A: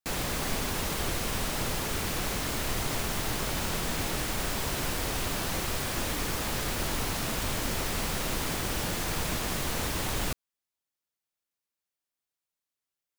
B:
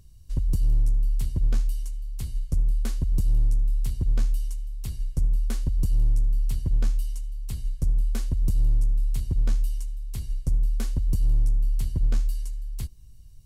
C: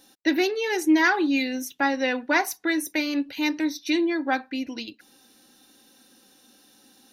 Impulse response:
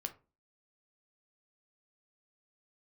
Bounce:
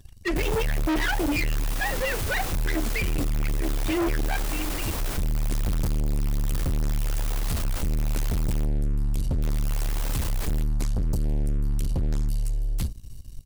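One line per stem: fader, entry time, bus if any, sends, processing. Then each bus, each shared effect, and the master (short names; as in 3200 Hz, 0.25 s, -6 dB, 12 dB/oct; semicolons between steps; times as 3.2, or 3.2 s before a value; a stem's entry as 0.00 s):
-15.0 dB, 0.30 s, muted 8.65–9.42, send -3.5 dB, half-waves squared off; high shelf 7600 Hz +9 dB
+3.0 dB, 0.00 s, send -12.5 dB, auto duck -8 dB, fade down 0.45 s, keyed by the third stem
-2.0 dB, 0.00 s, no send, sine-wave speech; high shelf 2300 Hz +12 dB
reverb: on, RT60 0.30 s, pre-delay 7 ms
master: notches 50/100/150/200/250/300 Hz; sample leveller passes 2; soft clip -22 dBFS, distortion -8 dB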